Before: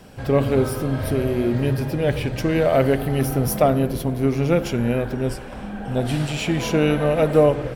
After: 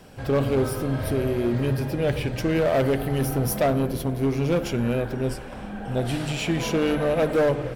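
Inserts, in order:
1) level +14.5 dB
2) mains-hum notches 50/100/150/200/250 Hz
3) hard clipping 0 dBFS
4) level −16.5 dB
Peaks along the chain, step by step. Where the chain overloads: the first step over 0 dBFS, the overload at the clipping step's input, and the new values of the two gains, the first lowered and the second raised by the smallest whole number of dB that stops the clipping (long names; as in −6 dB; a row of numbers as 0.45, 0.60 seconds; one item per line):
+10.0, +10.0, 0.0, −16.5 dBFS
step 1, 10.0 dB
step 1 +4.5 dB, step 4 −6.5 dB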